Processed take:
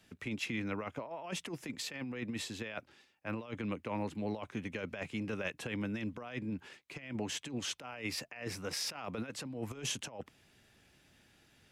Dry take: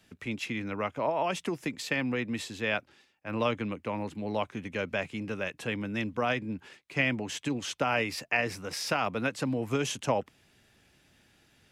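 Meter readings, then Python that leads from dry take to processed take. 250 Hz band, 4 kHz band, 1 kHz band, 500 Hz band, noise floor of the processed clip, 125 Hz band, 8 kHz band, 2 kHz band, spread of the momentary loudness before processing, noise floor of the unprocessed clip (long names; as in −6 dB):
−6.0 dB, −4.0 dB, −12.5 dB, −10.5 dB, −68 dBFS, −6.5 dB, −2.0 dB, −10.5 dB, 6 LU, −66 dBFS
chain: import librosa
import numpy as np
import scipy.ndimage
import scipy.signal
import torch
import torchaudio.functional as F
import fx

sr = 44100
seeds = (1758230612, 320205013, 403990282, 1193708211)

y = fx.over_compress(x, sr, threshold_db=-33.0, ratio=-0.5)
y = F.gain(torch.from_numpy(y), -5.0).numpy()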